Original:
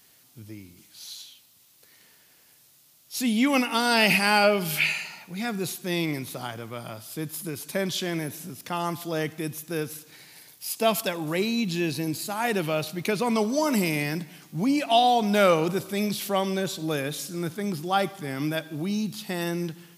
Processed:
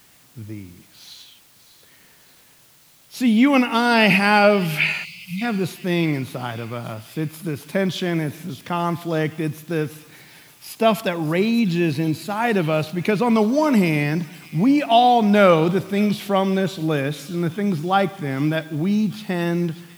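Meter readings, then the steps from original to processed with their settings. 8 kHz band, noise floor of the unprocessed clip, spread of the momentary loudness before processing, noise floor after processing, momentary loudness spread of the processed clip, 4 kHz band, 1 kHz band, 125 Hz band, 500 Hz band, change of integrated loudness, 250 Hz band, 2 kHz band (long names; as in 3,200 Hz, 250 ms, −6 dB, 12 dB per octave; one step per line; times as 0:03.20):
−4.5 dB, −58 dBFS, 16 LU, −53 dBFS, 14 LU, +1.0 dB, +5.5 dB, +9.0 dB, +6.0 dB, +6.0 dB, +8.0 dB, +4.5 dB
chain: bass and treble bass +4 dB, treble −12 dB
delay with a high-pass on its return 591 ms, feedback 57%, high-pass 3,300 Hz, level −12 dB
time-frequency box erased 0:05.04–0:05.42, 210–2,000 Hz
in parallel at −9 dB: bit-depth reduction 8 bits, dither triangular
on the sum: level +3 dB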